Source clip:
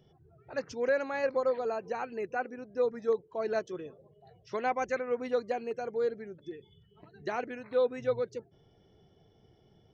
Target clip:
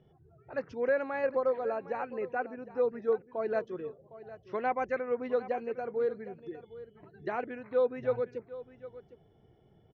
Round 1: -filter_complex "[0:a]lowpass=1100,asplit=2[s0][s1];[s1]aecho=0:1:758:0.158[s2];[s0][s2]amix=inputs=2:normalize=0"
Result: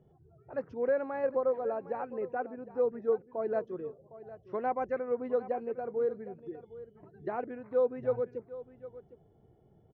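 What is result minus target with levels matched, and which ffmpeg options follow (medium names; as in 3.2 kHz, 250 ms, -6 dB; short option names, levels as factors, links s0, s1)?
2 kHz band -6.0 dB
-filter_complex "[0:a]lowpass=2300,asplit=2[s0][s1];[s1]aecho=0:1:758:0.158[s2];[s0][s2]amix=inputs=2:normalize=0"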